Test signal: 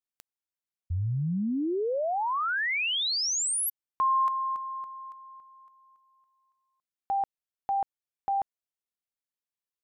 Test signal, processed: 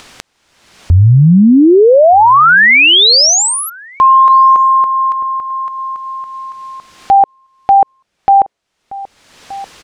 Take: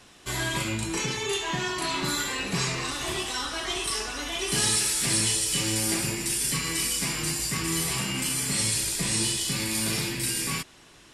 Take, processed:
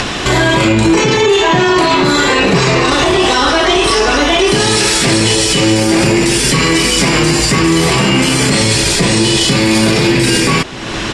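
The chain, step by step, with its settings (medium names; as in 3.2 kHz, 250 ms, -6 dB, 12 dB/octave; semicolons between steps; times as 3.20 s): dynamic bell 480 Hz, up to +8 dB, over -45 dBFS, Q 0.74; upward compressor, threshold -31 dBFS; distance through air 89 m; echo from a far wall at 210 m, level -25 dB; loudness maximiser +26.5 dB; trim -1.5 dB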